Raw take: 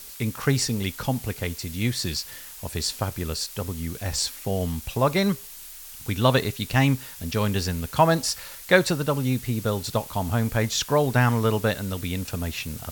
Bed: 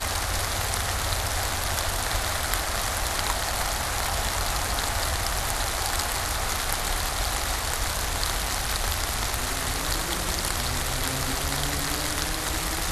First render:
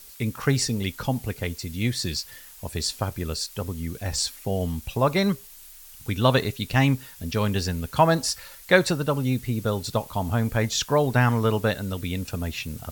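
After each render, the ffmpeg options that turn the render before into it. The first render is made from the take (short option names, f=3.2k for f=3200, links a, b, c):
-af "afftdn=nr=6:nf=-42"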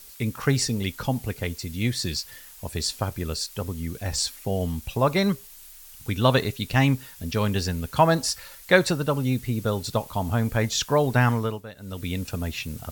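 -filter_complex "[0:a]asplit=3[a][b][c];[a]atrim=end=11.63,asetpts=PTS-STARTPTS,afade=t=out:st=11.3:d=0.33:silence=0.141254[d];[b]atrim=start=11.63:end=11.76,asetpts=PTS-STARTPTS,volume=-17dB[e];[c]atrim=start=11.76,asetpts=PTS-STARTPTS,afade=t=in:d=0.33:silence=0.141254[f];[d][e][f]concat=n=3:v=0:a=1"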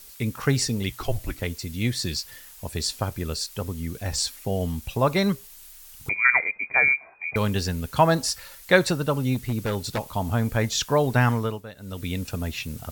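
-filter_complex "[0:a]asettb=1/sr,asplit=3[a][b][c];[a]atrim=end=0.894[d];[b]atrim=start=0.89:end=1.42,asetpts=PTS-STARTPTS,afade=t=in:d=0.004:c=qsin,afade=t=out:st=0.526:d=0.004:c=qsin,afreqshift=-140[e];[c]atrim=start=1.416[f];[d][e]acrossfade=d=0.004:c1=hsin:c2=qsin[g];[g][f]acrossfade=d=0.004:c1=qsin:c2=hsin,asettb=1/sr,asplit=3[h][i][j];[h]atrim=end=6.094[k];[i]atrim=start=6.09:end=7.36,asetpts=PTS-STARTPTS,afade=t=in:d=0.004:c=qsin,afade=t=out:st=1.266:d=0.004:c=qsin,lowpass=f=2.1k:t=q:w=0.5098,lowpass=f=2.1k:t=q:w=0.6013,lowpass=f=2.1k:t=q:w=0.9,lowpass=f=2.1k:t=q:w=2.563,afreqshift=-2500[l];[j]atrim=start=7.356[m];[k][l]acrossfade=d=0.004:c1=hsin:c2=qsin[n];[n][m]acrossfade=d=0.004:c1=qsin:c2=hsin,asplit=3[o][p][q];[o]afade=t=out:st=9.34:d=0.02[r];[p]aeval=exprs='0.112*(abs(mod(val(0)/0.112+3,4)-2)-1)':c=same,afade=t=in:st=9.34:d=0.02,afade=t=out:st=10:d=0.02[s];[q]afade=t=in:st=10:d=0.02[t];[r][s][t]amix=inputs=3:normalize=0"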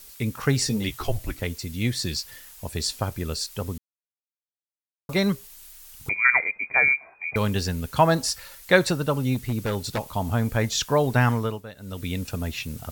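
-filter_complex "[0:a]asettb=1/sr,asplit=3[a][b][c];[a]atrim=end=0.644[d];[b]atrim=start=0.64:end=1.1,asetpts=PTS-STARTPTS,afade=t=in:d=0.004:c=qsin,afade=t=out:st=0.456:d=0.004:c=qsin,asplit=2[e][f];[f]adelay=14,volume=-5dB[g];[e][g]amix=inputs=2:normalize=0,atrim=end_sample=20286[h];[c]atrim=start=1.096[i];[d][h]acrossfade=d=0.004:c1=hsin:c2=qsin[j];[j][i]acrossfade=d=0.004:c1=qsin:c2=hsin,asplit=3[k][l][m];[k]atrim=end=3.78,asetpts=PTS-STARTPTS,afade=t=out:st=3.776:d=0.004:c=hsin[n];[l]atrim=start=3.78:end=5.09,asetpts=PTS-STARTPTS,volume=0[o];[m]atrim=start=5.09,asetpts=PTS-STARTPTS,afade=t=in:d=0.004:c=hsin[p];[n][o][p]concat=n=3:v=0:a=1"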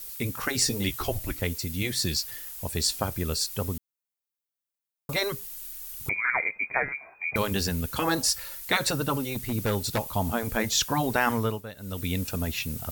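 -af "afftfilt=real='re*lt(hypot(re,im),0.501)':imag='im*lt(hypot(re,im),0.501)':win_size=1024:overlap=0.75,highshelf=f=11k:g=10.5"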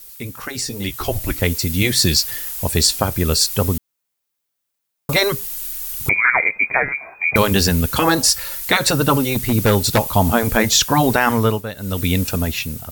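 -af "alimiter=limit=-14.5dB:level=0:latency=1:release=326,dynaudnorm=f=440:g=5:m=14dB"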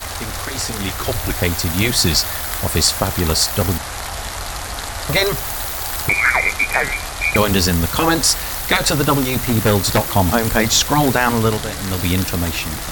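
-filter_complex "[1:a]volume=0dB[a];[0:a][a]amix=inputs=2:normalize=0"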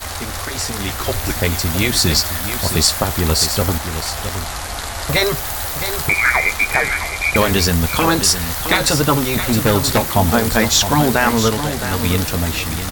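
-filter_complex "[0:a]asplit=2[a][b];[b]adelay=13,volume=-11.5dB[c];[a][c]amix=inputs=2:normalize=0,aecho=1:1:666:0.335"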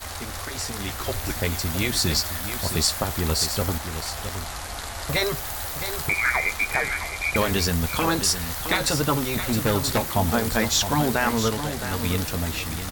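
-af "volume=-7.5dB"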